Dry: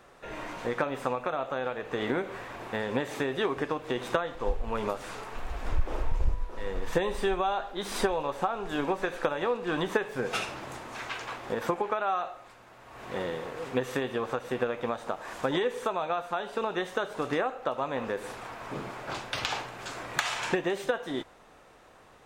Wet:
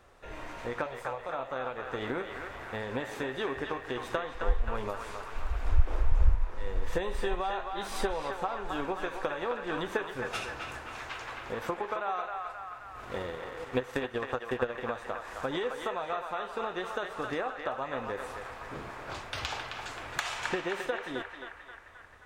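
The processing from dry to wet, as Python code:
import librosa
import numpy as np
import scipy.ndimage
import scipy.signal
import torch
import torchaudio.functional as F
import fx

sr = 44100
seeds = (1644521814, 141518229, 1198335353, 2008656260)

y = fx.transient(x, sr, attack_db=5, sustain_db=-8, at=(12.93, 14.75))
y = fx.low_shelf_res(y, sr, hz=110.0, db=8.0, q=1.5)
y = fx.fixed_phaser(y, sr, hz=690.0, stages=4, at=(0.86, 1.29))
y = fx.echo_banded(y, sr, ms=265, feedback_pct=66, hz=1500.0, wet_db=-3)
y = F.gain(torch.from_numpy(y), -4.5).numpy()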